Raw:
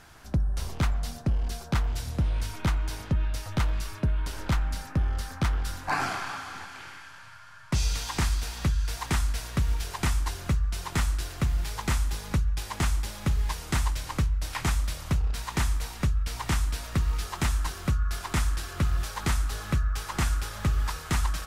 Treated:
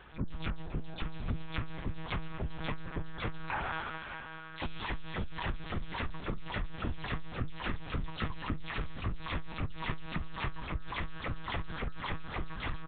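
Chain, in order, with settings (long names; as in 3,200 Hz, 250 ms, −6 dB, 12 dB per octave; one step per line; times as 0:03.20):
every frequency bin delayed by itself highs early, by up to 208 ms
downward compressor 12 to 1, threshold −30 dBFS, peak gain reduction 9.5 dB
time stretch by overlap-add 0.6×, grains 37 ms
double-tracking delay 26 ms −9 dB
single-tap delay 595 ms −13.5 dB
one-pitch LPC vocoder at 8 kHz 160 Hz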